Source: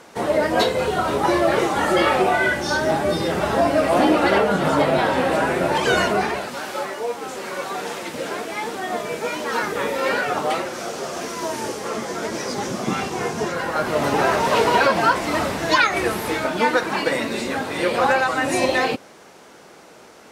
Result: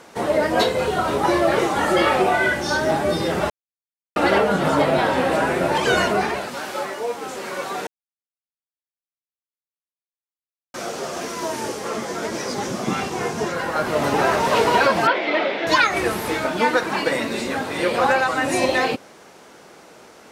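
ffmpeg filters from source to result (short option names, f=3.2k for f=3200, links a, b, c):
-filter_complex "[0:a]asettb=1/sr,asplit=3[a][b][c];[a]atrim=end=15.074[d];[b]atrim=start=15.07:end=15.67,asetpts=PTS-STARTPTS,afade=t=in:d=0.004:c=qsin,afade=t=out:st=0.596:d=0.004:c=qsin,highpass=f=250:w=0.5412,highpass=f=250:w=1.3066,equalizer=f=250:t=q:w=4:g=-4,equalizer=f=370:t=q:w=4:g=3,equalizer=f=580:t=q:w=4:g=5,equalizer=f=1.1k:t=q:w=4:g=-7,equalizer=f=2.2k:t=q:w=4:g=8,equalizer=f=3.4k:t=q:w=4:g=6,lowpass=f=3.9k:w=0.5412,lowpass=f=3.9k:w=1.3066[e];[c]atrim=start=15.666[f];[d][e]acrossfade=d=0.004:c1=hsin:c2=qsin[g];[g][f]acrossfade=d=0.004:c1=qsin:c2=hsin,asplit=5[h][i][j][k][l];[h]atrim=end=3.5,asetpts=PTS-STARTPTS,afade=t=out:st=3.496:d=0.004:c=hsin[m];[i]atrim=start=3.5:end=4.16,asetpts=PTS-STARTPTS,volume=0[n];[j]atrim=start=4.16:end=7.87,asetpts=PTS-STARTPTS,afade=t=in:d=0.004:c=hsin,afade=t=out:st=3.706:d=0.004:c=hsin[o];[k]atrim=start=7.87:end=10.74,asetpts=PTS-STARTPTS,volume=0[p];[l]atrim=start=10.74,asetpts=PTS-STARTPTS,afade=t=in:d=0.004:c=hsin[q];[m][n][o][p][q]concat=n=5:v=0:a=1"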